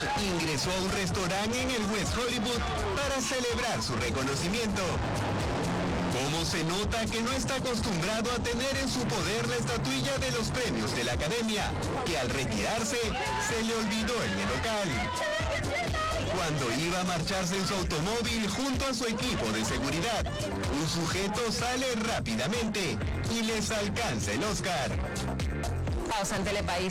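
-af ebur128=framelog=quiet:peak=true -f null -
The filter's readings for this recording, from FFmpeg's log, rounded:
Integrated loudness:
  I:         -29.7 LUFS
  Threshold: -39.7 LUFS
Loudness range:
  LRA:         0.6 LU
  Threshold: -49.7 LUFS
  LRA low:   -30.0 LUFS
  LRA high:  -29.4 LUFS
True peak:
  Peak:      -26.6 dBFS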